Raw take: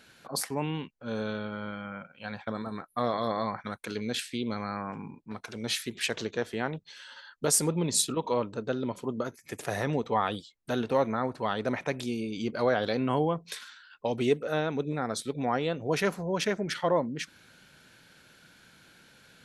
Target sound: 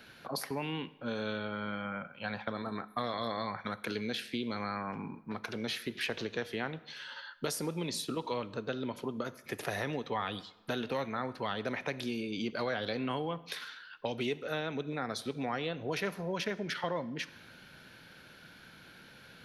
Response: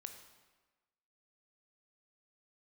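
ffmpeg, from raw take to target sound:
-filter_complex "[0:a]equalizer=f=7800:w=1.9:g=-14.5,acrossover=split=200|1800[s0][s1][s2];[s0]acompressor=threshold=0.00316:ratio=4[s3];[s1]acompressor=threshold=0.0112:ratio=4[s4];[s2]acompressor=threshold=0.00891:ratio=4[s5];[s3][s4][s5]amix=inputs=3:normalize=0,asplit=2[s6][s7];[1:a]atrim=start_sample=2205,asetrate=52920,aresample=44100[s8];[s7][s8]afir=irnorm=-1:irlink=0,volume=1.06[s9];[s6][s9]amix=inputs=2:normalize=0"

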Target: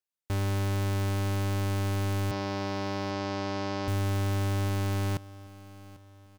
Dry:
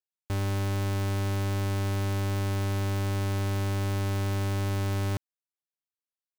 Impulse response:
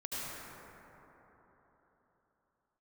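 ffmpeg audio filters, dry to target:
-filter_complex "[0:a]asettb=1/sr,asplit=3[s0][s1][s2];[s0]atrim=end=2.314[s3];[s1]atrim=start=2.31:end=3.88,asetpts=PTS-STARTPTS,afade=t=in:d=0.004:c=qsin,afade=t=out:st=1.566:d=0.004:c=qsin,highpass=190,equalizer=f=250:t=q:w=4:g=6,equalizer=f=660:t=q:w=4:g=7,equalizer=f=980:t=q:w=4:g=4,equalizer=f=5100:t=q:w=4:g=6,lowpass=f=5600:w=0.5412,lowpass=f=5600:w=1.3066[s4];[s2]atrim=start=3.876[s5];[s3][s4]acrossfade=d=0.004:c1=hsin:c2=qsin[s6];[s6][s5]acrossfade=d=0.004:c1=qsin:c2=hsin,asplit=2[s7][s8];[s8]aecho=0:1:794|1588|2382:0.112|0.0494|0.0217[s9];[s7][s9]amix=inputs=2:normalize=0"

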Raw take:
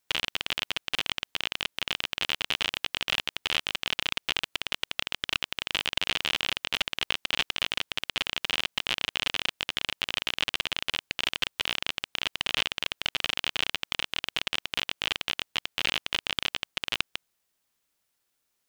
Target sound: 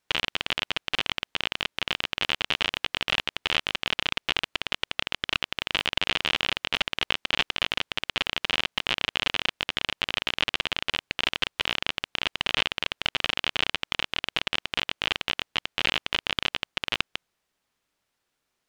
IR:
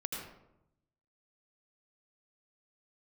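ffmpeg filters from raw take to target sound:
-af "aemphasis=mode=reproduction:type=50kf,volume=1.68"

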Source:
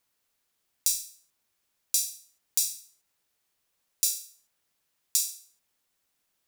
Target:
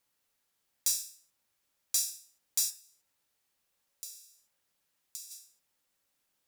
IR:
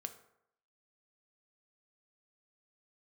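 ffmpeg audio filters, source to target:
-filter_complex "[0:a]asplit=3[s0][s1][s2];[s0]afade=t=out:st=2.69:d=0.02[s3];[s1]acompressor=threshold=0.0126:ratio=10,afade=t=in:st=2.69:d=0.02,afade=t=out:st=5.3:d=0.02[s4];[s2]afade=t=in:st=5.3:d=0.02[s5];[s3][s4][s5]amix=inputs=3:normalize=0,asoftclip=type=tanh:threshold=0.2[s6];[1:a]atrim=start_sample=2205,afade=t=out:st=0.23:d=0.01,atrim=end_sample=10584,asetrate=52920,aresample=44100[s7];[s6][s7]afir=irnorm=-1:irlink=0,volume=1.41"

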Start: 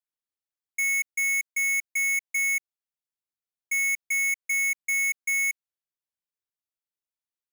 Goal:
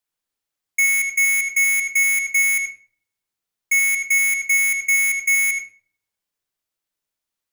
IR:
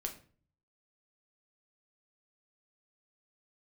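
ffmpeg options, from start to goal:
-filter_complex "[0:a]asplit=2[s0][s1];[1:a]atrim=start_sample=2205,lowpass=8700,adelay=77[s2];[s1][s2]afir=irnorm=-1:irlink=0,volume=0.562[s3];[s0][s3]amix=inputs=2:normalize=0,volume=2.82"

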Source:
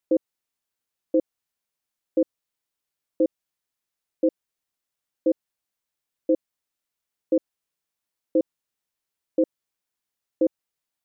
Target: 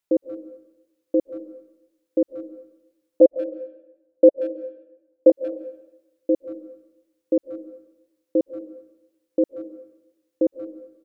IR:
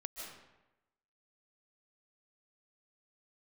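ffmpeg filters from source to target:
-filter_complex "[0:a]asettb=1/sr,asplit=3[s0][s1][s2];[s0]atrim=end=3.214[s3];[s1]atrim=start=3.21:end=5.3,asetpts=PTS-STARTPTS,afade=t=in:d=0.004:c=qsin,afade=t=out:st=2.086:d=0.004:c=qsin,lowpass=f=590:t=q:w=5[s4];[s2]atrim=start=5.296[s5];[s3][s4]acrossfade=d=0.004:c1=hsin:c2=qsin[s6];[s6][s5]acrossfade=d=0.004:c1=qsin:c2=hsin,asplit=2[s7][s8];[s8]adelay=180,highpass=300,lowpass=3400,asoftclip=type=hard:threshold=0.1,volume=0.0631[s9];[s7][s9]amix=inputs=2:normalize=0,asplit=2[s10][s11];[1:a]atrim=start_sample=2205[s12];[s11][s12]afir=irnorm=-1:irlink=0,volume=0.473[s13];[s10][s13]amix=inputs=2:normalize=0,volume=0.891"

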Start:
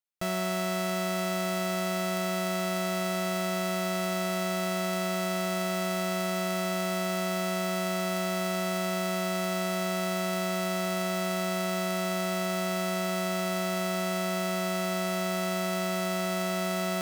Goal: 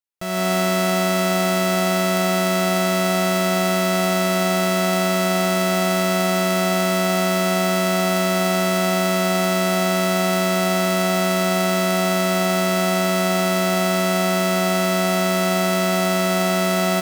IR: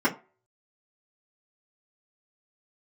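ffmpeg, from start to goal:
-filter_complex "[0:a]asplit=5[s0][s1][s2][s3][s4];[s1]adelay=152,afreqshift=83,volume=0.141[s5];[s2]adelay=304,afreqshift=166,volume=0.0596[s6];[s3]adelay=456,afreqshift=249,volume=0.0248[s7];[s4]adelay=608,afreqshift=332,volume=0.0105[s8];[s0][s5][s6][s7][s8]amix=inputs=5:normalize=0,dynaudnorm=f=130:g=5:m=4.22,volume=0.794"

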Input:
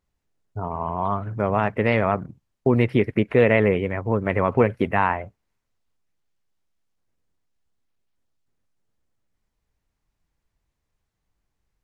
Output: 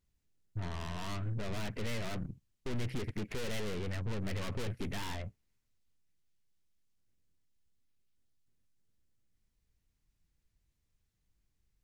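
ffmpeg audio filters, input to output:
-af "aeval=exprs='(tanh(50.1*val(0)+0.55)-tanh(0.55))/50.1':c=same,equalizer=f=840:w=0.57:g=-11,volume=1.26"

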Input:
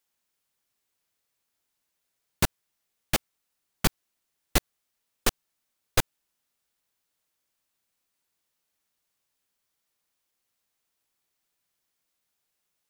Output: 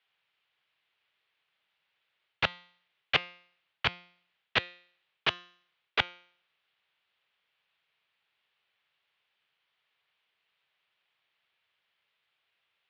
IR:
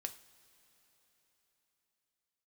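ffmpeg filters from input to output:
-af "areverse,acompressor=threshold=0.0562:ratio=6,areverse,crystalizer=i=9:c=0,highpass=f=180:t=q:w=0.5412,highpass=f=180:t=q:w=1.307,lowpass=f=3300:t=q:w=0.5176,lowpass=f=3300:t=q:w=0.7071,lowpass=f=3300:t=q:w=1.932,afreqshift=-78,equalizer=f=260:w=3.2:g=-13,bandreject=f=176.6:t=h:w=4,bandreject=f=353.2:t=h:w=4,bandreject=f=529.8:t=h:w=4,bandreject=f=706.4:t=h:w=4,bandreject=f=883:t=h:w=4,bandreject=f=1059.6:t=h:w=4,bandreject=f=1236.2:t=h:w=4,bandreject=f=1412.8:t=h:w=4,bandreject=f=1589.4:t=h:w=4,bandreject=f=1766:t=h:w=4,bandreject=f=1942.6:t=h:w=4,bandreject=f=2119.2:t=h:w=4,bandreject=f=2295.8:t=h:w=4,bandreject=f=2472.4:t=h:w=4,bandreject=f=2649:t=h:w=4,bandreject=f=2825.6:t=h:w=4,bandreject=f=3002.2:t=h:w=4,bandreject=f=3178.8:t=h:w=4,bandreject=f=3355.4:t=h:w=4,bandreject=f=3532:t=h:w=4,bandreject=f=3708.6:t=h:w=4,bandreject=f=3885.2:t=h:w=4,bandreject=f=4061.8:t=h:w=4,bandreject=f=4238.4:t=h:w=4,bandreject=f=4415:t=h:w=4,bandreject=f=4591.6:t=h:w=4,bandreject=f=4768.2:t=h:w=4,bandreject=f=4944.8:t=h:w=4,bandreject=f=5121.4:t=h:w=4,bandreject=f=5298:t=h:w=4,bandreject=f=5474.6:t=h:w=4,bandreject=f=5651.2:t=h:w=4,bandreject=f=5827.8:t=h:w=4,bandreject=f=6004.4:t=h:w=4,bandreject=f=6181:t=h:w=4,bandreject=f=6357.6:t=h:w=4,bandreject=f=6534.2:t=h:w=4,bandreject=f=6710.8:t=h:w=4,bandreject=f=6887.4:t=h:w=4"

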